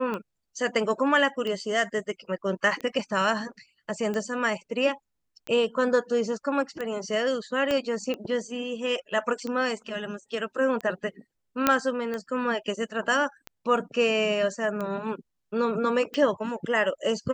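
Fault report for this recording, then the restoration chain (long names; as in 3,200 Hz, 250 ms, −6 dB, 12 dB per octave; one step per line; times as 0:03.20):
scratch tick 45 rpm −20 dBFS
0:07.71: click −14 dBFS
0:11.67: click −5 dBFS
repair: click removal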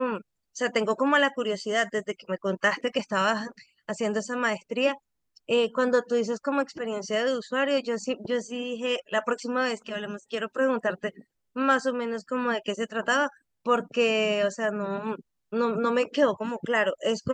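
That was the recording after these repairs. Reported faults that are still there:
0:07.71: click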